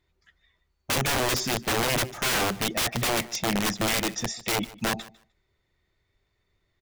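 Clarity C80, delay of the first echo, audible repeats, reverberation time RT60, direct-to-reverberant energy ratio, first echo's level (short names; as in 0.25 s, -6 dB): none, 0.151 s, 1, none, none, -20.0 dB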